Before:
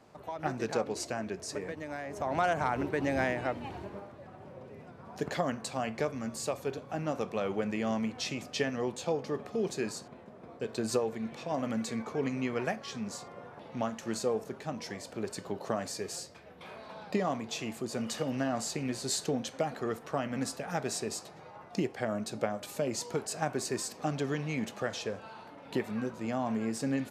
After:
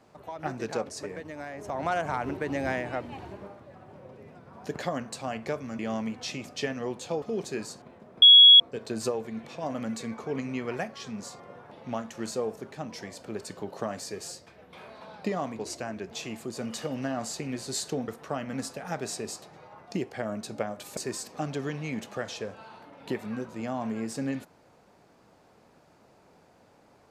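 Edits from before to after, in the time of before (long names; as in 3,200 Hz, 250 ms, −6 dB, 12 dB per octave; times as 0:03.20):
0:00.89–0:01.41: move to 0:17.47
0:06.31–0:07.76: remove
0:09.19–0:09.48: remove
0:10.48: insert tone 3,340 Hz −9.5 dBFS 0.38 s
0:19.44–0:19.91: remove
0:22.80–0:23.62: remove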